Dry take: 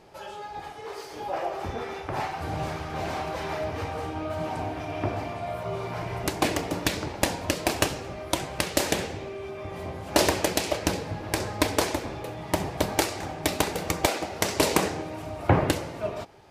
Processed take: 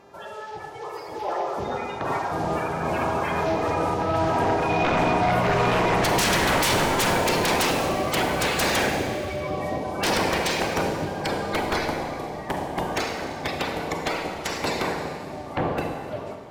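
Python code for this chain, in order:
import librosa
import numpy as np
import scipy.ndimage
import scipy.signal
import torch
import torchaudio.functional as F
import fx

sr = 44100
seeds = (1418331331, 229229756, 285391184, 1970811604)

p1 = fx.spec_quant(x, sr, step_db=30)
p2 = fx.doppler_pass(p1, sr, speed_mps=13, closest_m=6.8, pass_at_s=6.5)
p3 = fx.highpass(p2, sr, hz=120.0, slope=6)
p4 = fx.high_shelf(p3, sr, hz=5100.0, db=-7.5)
p5 = fx.rider(p4, sr, range_db=5, speed_s=0.5)
p6 = p4 + F.gain(torch.from_numpy(p5), 2.0).numpy()
p7 = fx.fold_sine(p6, sr, drive_db=12, ceiling_db=-17.5)
p8 = fx.rev_schroeder(p7, sr, rt60_s=1.9, comb_ms=33, drr_db=3.5)
p9 = fx.dmg_buzz(p8, sr, base_hz=400.0, harmonics=18, level_db=-55.0, tilt_db=-6, odd_only=False)
y = F.gain(torch.from_numpy(p9), -2.0).numpy()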